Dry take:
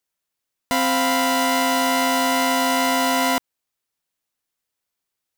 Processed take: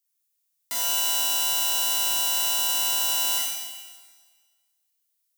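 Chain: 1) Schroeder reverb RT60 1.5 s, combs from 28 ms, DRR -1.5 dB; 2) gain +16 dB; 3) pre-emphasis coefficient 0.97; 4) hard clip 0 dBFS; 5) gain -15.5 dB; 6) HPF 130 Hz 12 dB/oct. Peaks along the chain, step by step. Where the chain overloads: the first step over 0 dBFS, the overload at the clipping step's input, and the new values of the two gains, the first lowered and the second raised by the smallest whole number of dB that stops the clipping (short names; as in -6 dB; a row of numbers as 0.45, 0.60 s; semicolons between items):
-5.5, +10.5, +9.5, 0.0, -15.5, -15.0 dBFS; step 2, 9.5 dB; step 2 +6 dB, step 5 -5.5 dB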